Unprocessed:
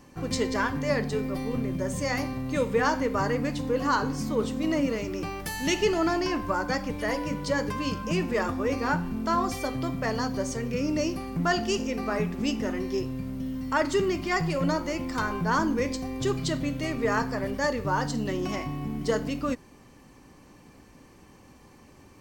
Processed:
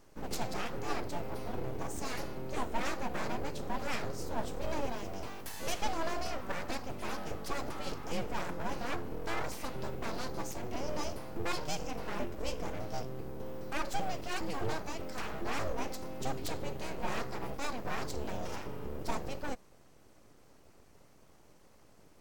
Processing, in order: peaking EQ 1.8 kHz -5.5 dB 2.1 oct; full-wave rectifier; trim -5 dB

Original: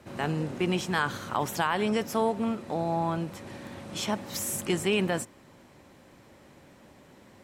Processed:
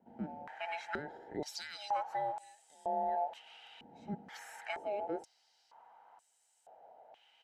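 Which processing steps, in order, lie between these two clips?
every band turned upside down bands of 1 kHz; comb 1.3 ms, depth 32%; step-sequenced band-pass 2.1 Hz 230–8000 Hz; trim +1 dB

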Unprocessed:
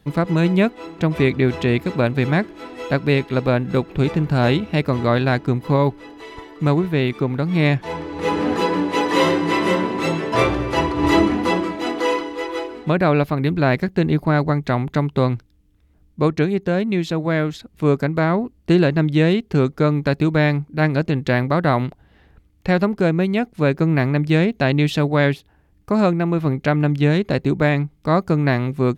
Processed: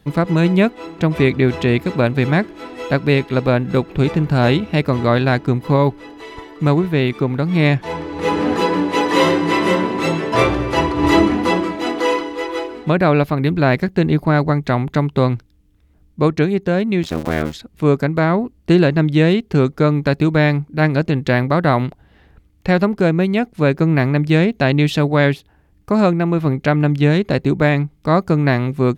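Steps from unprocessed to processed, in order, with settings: 17.03–17.53 s: cycle switcher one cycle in 2, muted; trim +2.5 dB

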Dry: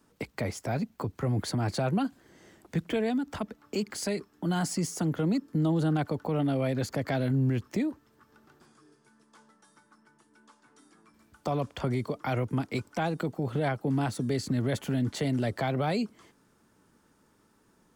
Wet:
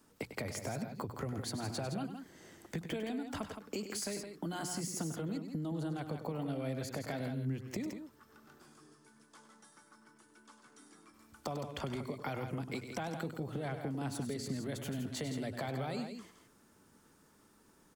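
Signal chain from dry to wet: treble shelf 5.4 kHz +5.5 dB; hum notches 60/120/180 Hz; compression 6:1, threshold -35 dBFS, peak gain reduction 11.5 dB; on a send: loudspeakers at several distances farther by 34 m -10 dB, 57 m -8 dB; on the sum: trim -1.5 dB

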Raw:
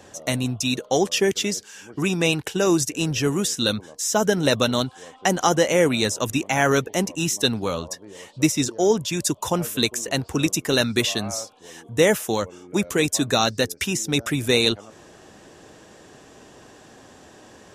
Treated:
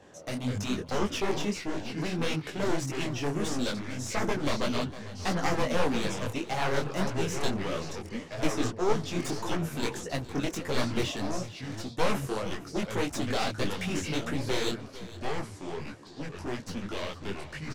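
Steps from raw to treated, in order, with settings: one-sided wavefolder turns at -19 dBFS; treble shelf 5 kHz -11.5 dB; ever faster or slower copies 125 ms, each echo -4 st, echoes 2, each echo -6 dB; on a send: delay 456 ms -16.5 dB; on the sum: detune thickener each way 58 cents; trim -3 dB

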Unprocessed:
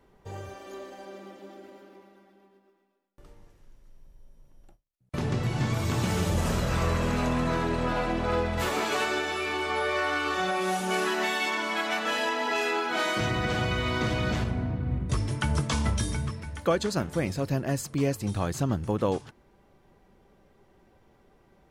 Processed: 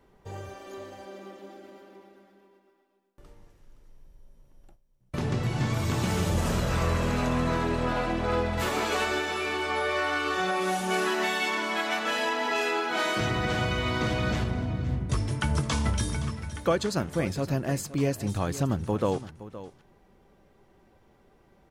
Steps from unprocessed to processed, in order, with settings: delay 518 ms -15 dB

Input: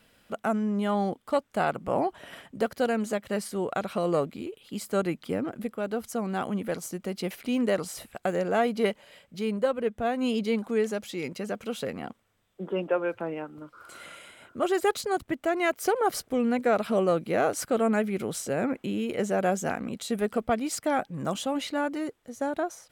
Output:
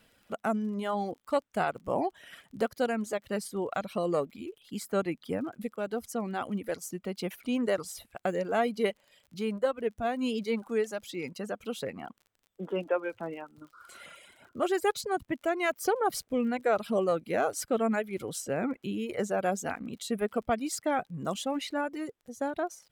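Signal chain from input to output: reverb removal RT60 1.2 s; crackle 36 per s -46 dBFS; trim -2 dB

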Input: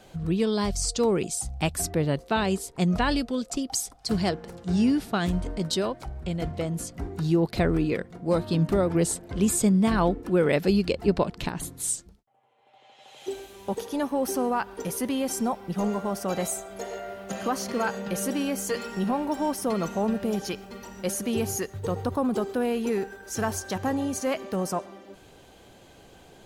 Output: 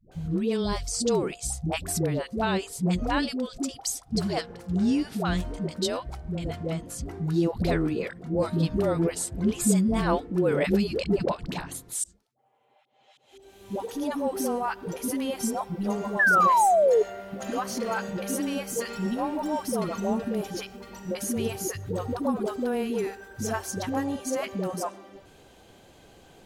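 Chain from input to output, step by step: 11.92–13.60 s: slow attack 393 ms; 16.08–16.97 s: painted sound fall 410–1800 Hz -18 dBFS; phase dispersion highs, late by 117 ms, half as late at 430 Hz; trim -1.5 dB

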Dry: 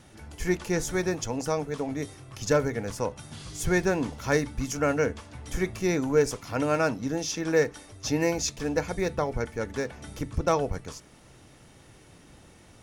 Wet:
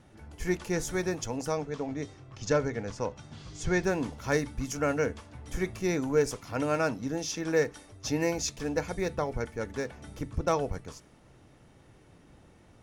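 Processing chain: 1.57–3.84 s: low-pass 7.1 kHz 24 dB/octave; tape noise reduction on one side only decoder only; trim -3 dB

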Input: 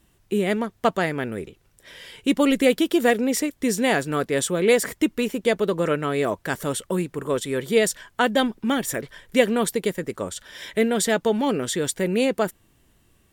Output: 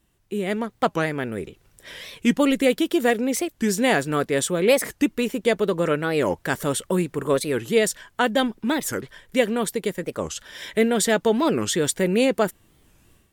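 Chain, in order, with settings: level rider gain up to 11.5 dB; warped record 45 rpm, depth 250 cents; trim -6 dB

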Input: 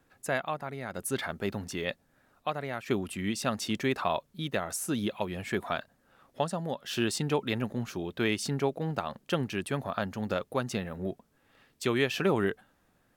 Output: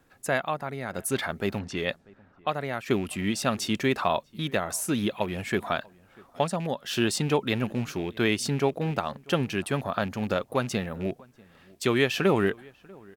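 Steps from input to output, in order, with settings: rattle on loud lows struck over -34 dBFS, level -37 dBFS; echo from a far wall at 110 m, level -25 dB; 1.59–2.48 s: level-controlled noise filter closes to 2 kHz, open at -30 dBFS; trim +4 dB

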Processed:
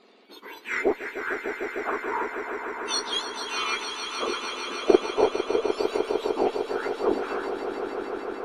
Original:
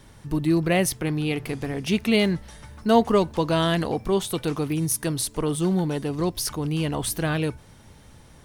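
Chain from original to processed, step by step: spectrum inverted on a logarithmic axis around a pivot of 2 kHz; modulation noise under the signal 28 dB; LFO low-pass saw down 0.35 Hz 570–4100 Hz; Chebyshev shaper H 3 -21 dB, 6 -33 dB, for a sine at -2.5 dBFS; on a send: echo with a slow build-up 151 ms, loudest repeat 5, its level -10 dB

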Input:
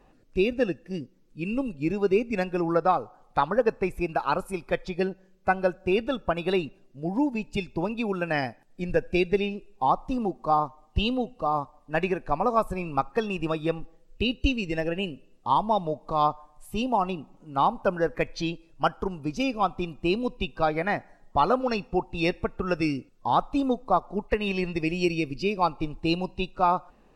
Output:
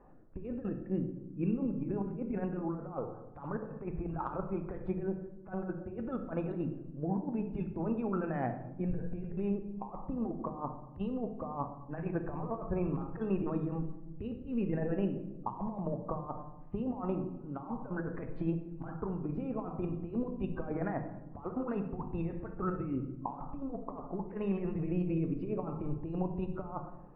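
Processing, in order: low-pass 1.5 kHz 24 dB/octave; bass shelf 120 Hz -3 dB; compressor with a negative ratio -30 dBFS, ratio -0.5; on a send: reverberation RT60 0.95 s, pre-delay 21 ms, DRR 7.5 dB; on the sum: trim -5.5 dB

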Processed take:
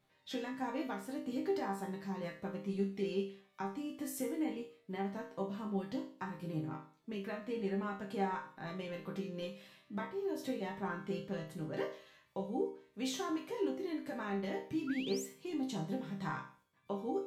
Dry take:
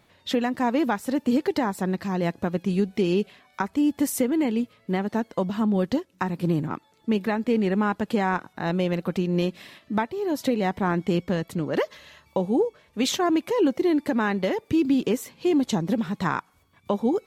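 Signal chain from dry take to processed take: chord resonator C3 minor, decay 0.44 s; painted sound rise, 14.87–15.26 s, 1.3–8.3 kHz -49 dBFS; trim +2.5 dB

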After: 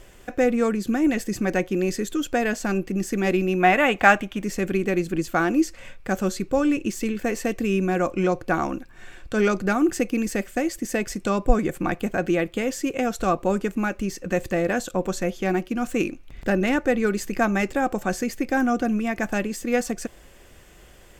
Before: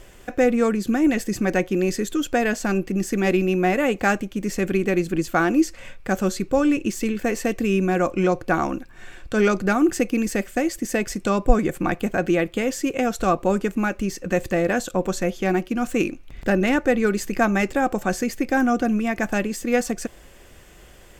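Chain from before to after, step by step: time-frequency box 3.60–4.43 s, 590–3900 Hz +8 dB; trim -2 dB

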